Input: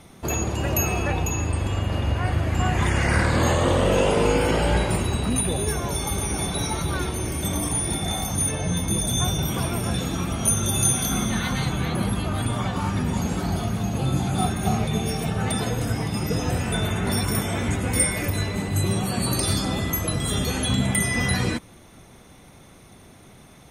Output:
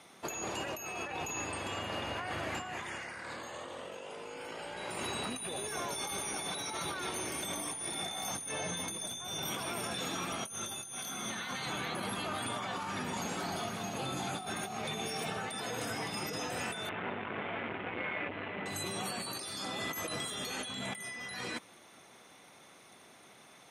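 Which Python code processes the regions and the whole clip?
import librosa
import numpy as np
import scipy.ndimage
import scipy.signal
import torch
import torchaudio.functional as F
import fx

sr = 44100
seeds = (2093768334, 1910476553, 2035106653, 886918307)

y = fx.chain(x, sr, fx.cvsd(bps=16000),
    fx.transformer_sat(knee_hz=380.0), at=(16.89, 18.66))
y = fx.weighting(y, sr, curve='A')
y = fx.over_compress(y, sr, threshold_db=-32.0, ratio=-1.0)
y = y * librosa.db_to_amplitude(-7.0)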